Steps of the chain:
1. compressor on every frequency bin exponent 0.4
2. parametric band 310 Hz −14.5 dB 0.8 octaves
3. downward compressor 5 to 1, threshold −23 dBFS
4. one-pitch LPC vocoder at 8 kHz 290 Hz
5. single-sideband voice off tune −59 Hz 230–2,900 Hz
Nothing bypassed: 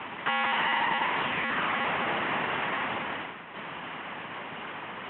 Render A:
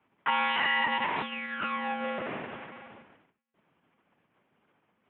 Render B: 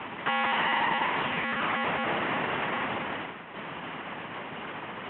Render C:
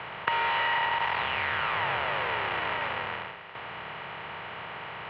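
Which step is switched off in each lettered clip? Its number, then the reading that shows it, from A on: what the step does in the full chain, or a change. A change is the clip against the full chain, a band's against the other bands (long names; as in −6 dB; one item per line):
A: 1, 125 Hz band −5.0 dB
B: 2, 4 kHz band −2.5 dB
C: 4, 250 Hz band −9.0 dB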